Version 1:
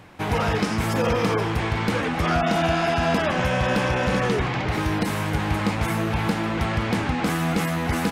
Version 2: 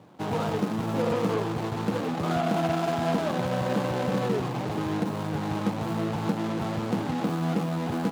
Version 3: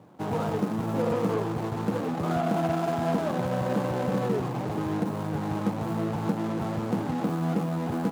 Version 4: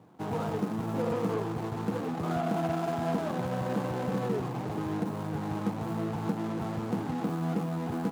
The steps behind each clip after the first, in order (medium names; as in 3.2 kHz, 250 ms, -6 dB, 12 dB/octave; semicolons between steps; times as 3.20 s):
median filter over 25 samples; high-pass 120 Hz 24 dB/octave; trim -2.5 dB
peaking EQ 3.6 kHz -6 dB 2 oct
band-stop 570 Hz, Q 12; trim -3.5 dB